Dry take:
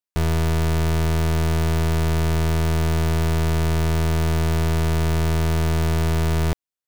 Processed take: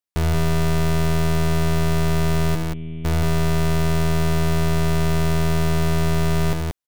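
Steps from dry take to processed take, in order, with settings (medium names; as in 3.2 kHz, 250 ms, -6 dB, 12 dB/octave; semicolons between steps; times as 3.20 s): 2.55–3.05 s: cascade formant filter i; loudspeakers at several distances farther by 26 m -11 dB, 62 m -4 dB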